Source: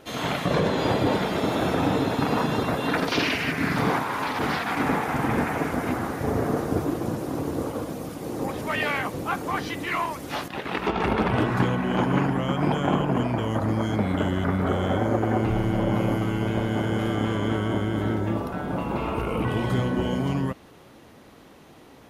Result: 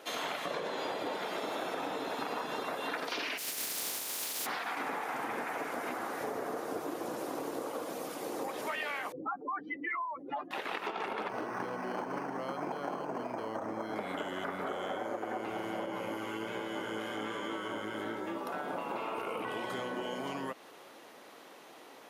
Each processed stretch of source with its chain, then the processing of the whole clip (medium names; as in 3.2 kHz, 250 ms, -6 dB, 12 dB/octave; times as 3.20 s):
3.37–4.45 s: spectral contrast reduction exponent 0.28 + peaking EQ 1.3 kHz -12 dB 2.8 oct
9.12–10.51 s: spectral contrast enhancement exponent 3.2 + hum notches 60/120/180/240/300/360 Hz
11.29–13.96 s: tape spacing loss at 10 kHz 21 dB + decimation joined by straight lines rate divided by 6×
15.86–18.47 s: chorus 1.2 Hz, delay 15 ms, depth 4.2 ms + band-stop 700 Hz, Q 5.7
whole clip: high-pass 450 Hz 12 dB/octave; compression, threshold -34 dBFS